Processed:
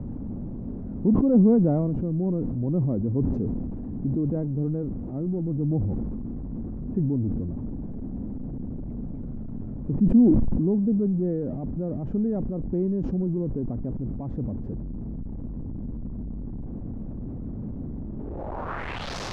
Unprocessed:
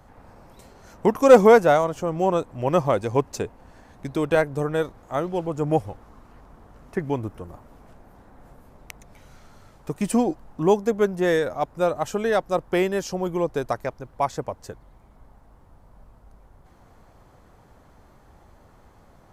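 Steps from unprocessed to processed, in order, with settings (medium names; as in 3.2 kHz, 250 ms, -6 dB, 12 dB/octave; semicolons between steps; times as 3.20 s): jump at every zero crossing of -23 dBFS; low-pass sweep 240 Hz -> 5.3 kHz, 18.14–19.15 s; decay stretcher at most 22 dB/s; trim -5 dB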